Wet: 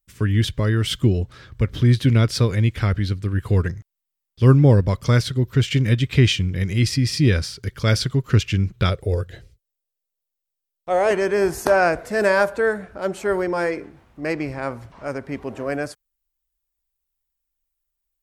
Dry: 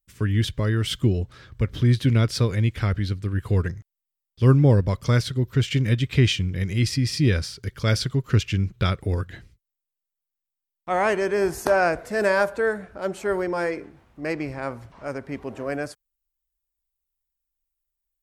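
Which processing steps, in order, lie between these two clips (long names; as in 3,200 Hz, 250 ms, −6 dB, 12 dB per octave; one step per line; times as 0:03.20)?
0:08.89–0:11.11: graphic EQ with 10 bands 250 Hz −11 dB, 500 Hz +9 dB, 1,000 Hz −7 dB, 2,000 Hz −5 dB
level +3 dB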